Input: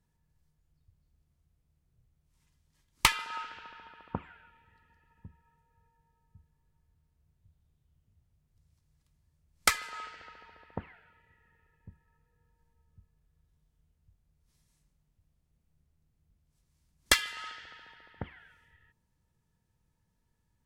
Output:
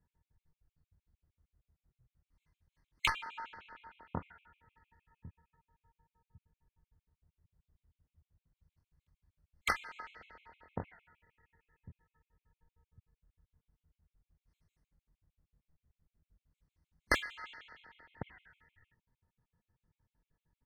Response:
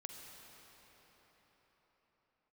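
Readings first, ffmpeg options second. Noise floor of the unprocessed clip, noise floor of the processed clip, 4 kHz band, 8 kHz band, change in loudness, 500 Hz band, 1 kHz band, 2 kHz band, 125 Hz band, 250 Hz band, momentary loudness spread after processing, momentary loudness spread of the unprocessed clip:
-77 dBFS, under -85 dBFS, -10.5 dB, -17.0 dB, -7.5 dB, -2.5 dB, -5.0 dB, -4.5 dB, -3.0 dB, -3.0 dB, 24 LU, 20 LU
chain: -filter_complex "[0:a]bass=f=250:g=0,treble=f=4k:g=-14,asplit=2[a][b];[b]aecho=0:1:24|43:0.668|0.188[c];[a][c]amix=inputs=2:normalize=0,afftfilt=real='re*gt(sin(2*PI*6.5*pts/sr)*(1-2*mod(floor(b*sr/1024/2100),2)),0)':imag='im*gt(sin(2*PI*6.5*pts/sr)*(1-2*mod(floor(b*sr/1024/2100),2)),0)':win_size=1024:overlap=0.75,volume=-2.5dB"

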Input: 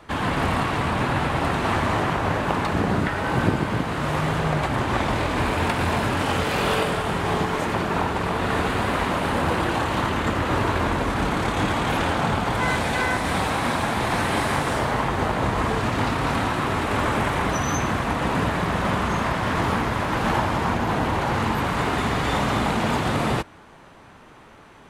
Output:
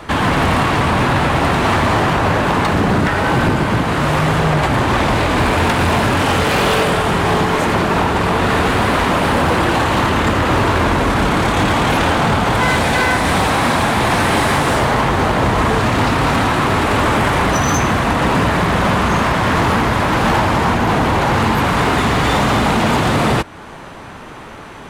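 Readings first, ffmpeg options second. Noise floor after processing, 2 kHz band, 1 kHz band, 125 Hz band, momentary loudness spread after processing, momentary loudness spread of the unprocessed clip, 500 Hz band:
-33 dBFS, +8.5 dB, +8.0 dB, +8.0 dB, 1 LU, 1 LU, +8.0 dB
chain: -filter_complex "[0:a]asplit=2[a][b];[b]acompressor=threshold=-34dB:ratio=6,volume=1dB[c];[a][c]amix=inputs=2:normalize=0,asoftclip=type=hard:threshold=-17.5dB,volume=7.5dB"

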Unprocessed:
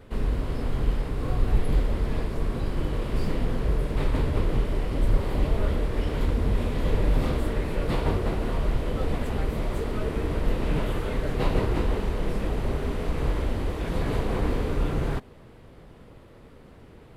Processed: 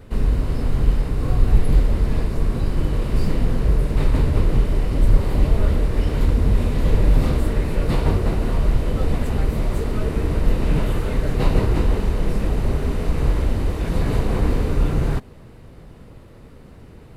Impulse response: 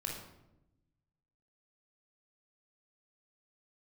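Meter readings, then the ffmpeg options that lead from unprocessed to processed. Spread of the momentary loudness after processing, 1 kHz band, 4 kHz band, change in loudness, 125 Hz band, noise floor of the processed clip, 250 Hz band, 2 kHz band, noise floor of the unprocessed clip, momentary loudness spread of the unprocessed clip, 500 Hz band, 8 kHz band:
4 LU, +2.5 dB, +3.0 dB, +6.5 dB, +7.5 dB, -43 dBFS, +5.0 dB, +2.5 dB, -49 dBFS, 4 LU, +3.0 dB, n/a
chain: -af "bass=f=250:g=5,treble=f=4k:g=4,bandreject=f=3.3k:w=17,volume=2.5dB"

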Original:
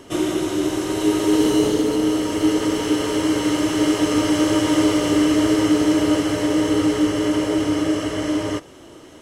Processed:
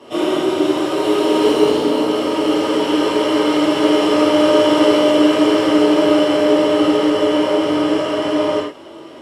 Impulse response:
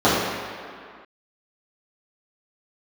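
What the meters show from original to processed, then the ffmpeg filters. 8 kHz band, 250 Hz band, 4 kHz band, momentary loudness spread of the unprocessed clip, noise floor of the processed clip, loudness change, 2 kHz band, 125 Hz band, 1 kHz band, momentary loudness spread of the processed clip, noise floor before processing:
-4.5 dB, +2.0 dB, +5.5 dB, 5 LU, -36 dBFS, +4.0 dB, +4.0 dB, -4.5 dB, +8.0 dB, 5 LU, -43 dBFS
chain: -filter_complex "[0:a]highpass=f=990:p=1[a];[1:a]atrim=start_sample=2205,afade=t=out:st=0.15:d=0.01,atrim=end_sample=7056,asetrate=34839,aresample=44100[b];[a][b]afir=irnorm=-1:irlink=0,volume=-13.5dB"

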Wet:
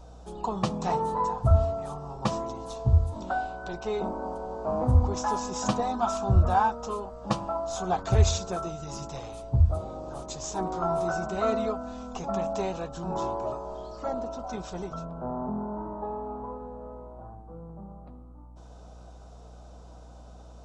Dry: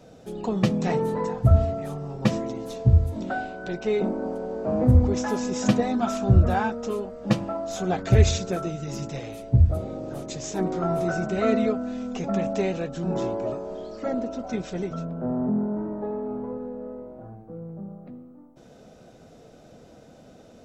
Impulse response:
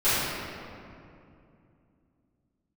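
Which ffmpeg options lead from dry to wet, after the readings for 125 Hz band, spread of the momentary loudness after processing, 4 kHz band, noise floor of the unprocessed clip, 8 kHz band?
-4.5 dB, 16 LU, -2.5 dB, -50 dBFS, n/a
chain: -af "aeval=exprs='val(0)+0.00631*(sin(2*PI*60*n/s)+sin(2*PI*2*60*n/s)/2+sin(2*PI*3*60*n/s)/3+sin(2*PI*4*60*n/s)/4+sin(2*PI*5*60*n/s)/5)':c=same,equalizer=f=125:t=o:w=1:g=-6,equalizer=f=250:t=o:w=1:g=-8,equalizer=f=500:t=o:w=1:g=-6,equalizer=f=1k:t=o:w=1:g=11,equalizer=f=2k:t=o:w=1:g=-12,aresample=22050,aresample=44100"

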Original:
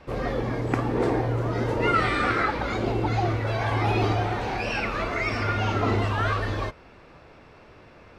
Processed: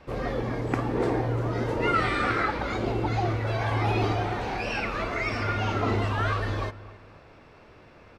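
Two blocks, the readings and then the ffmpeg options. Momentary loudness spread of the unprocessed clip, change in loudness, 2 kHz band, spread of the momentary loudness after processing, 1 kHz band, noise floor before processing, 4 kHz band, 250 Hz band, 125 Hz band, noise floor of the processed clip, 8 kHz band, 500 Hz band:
5 LU, -2.0 dB, -2.0 dB, 5 LU, -2.0 dB, -51 dBFS, -2.0 dB, -2.0 dB, -2.0 dB, -52 dBFS, -2.0 dB, -2.0 dB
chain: -filter_complex "[0:a]asplit=2[a][b];[b]adelay=264,lowpass=f=2k:p=1,volume=-17.5dB,asplit=2[c][d];[d]adelay=264,lowpass=f=2k:p=1,volume=0.41,asplit=2[e][f];[f]adelay=264,lowpass=f=2k:p=1,volume=0.41[g];[c][e][g]amix=inputs=3:normalize=0[h];[a][h]amix=inputs=2:normalize=0,volume=-2dB"

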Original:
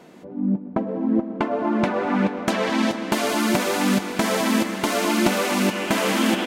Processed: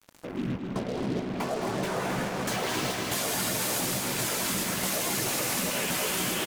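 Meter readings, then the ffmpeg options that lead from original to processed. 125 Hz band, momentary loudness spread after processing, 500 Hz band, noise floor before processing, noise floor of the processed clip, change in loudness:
-4.5 dB, 6 LU, -8.5 dB, -38 dBFS, -37 dBFS, -6.5 dB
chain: -filter_complex "[0:a]afftfilt=real='hypot(re,im)*cos(2*PI*random(0))':imag='hypot(re,im)*sin(2*PI*random(1))':win_size=512:overlap=0.75,crystalizer=i=2.5:c=0,adynamicequalizer=threshold=0.00794:dfrequency=280:dqfactor=2.8:tfrequency=280:tqfactor=2.8:attack=5:release=100:ratio=0.375:range=2.5:mode=cutabove:tftype=bell,acontrast=41,alimiter=limit=-16dB:level=0:latency=1:release=25,acompressor=threshold=-30dB:ratio=2.5,asplit=2[a][b];[b]adelay=16,volume=-8dB[c];[a][c]amix=inputs=2:normalize=0,acrusher=bits=5:mix=0:aa=0.5,equalizer=f=10k:t=o:w=2.4:g=2.5,aecho=1:1:215.7|268.2:0.355|0.447,volume=-1.5dB"

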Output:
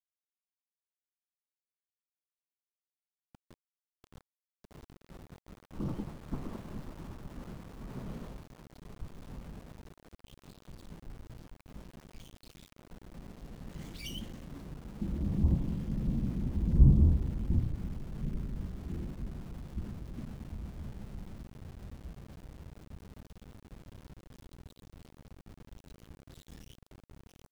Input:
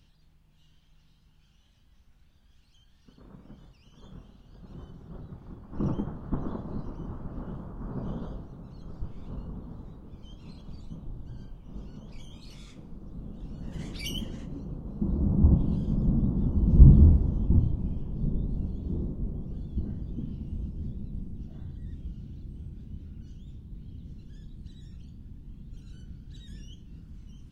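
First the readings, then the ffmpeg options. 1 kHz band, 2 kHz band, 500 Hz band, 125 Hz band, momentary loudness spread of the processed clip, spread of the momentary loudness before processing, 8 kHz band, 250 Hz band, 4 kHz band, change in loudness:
-4.5 dB, -2.0 dB, -6.0 dB, -7.0 dB, 22 LU, 21 LU, n/a, -7.0 dB, -6.0 dB, -7.0 dB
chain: -af "aeval=exprs='val(0)*gte(abs(val(0)),0.00944)':c=same,volume=-7dB"

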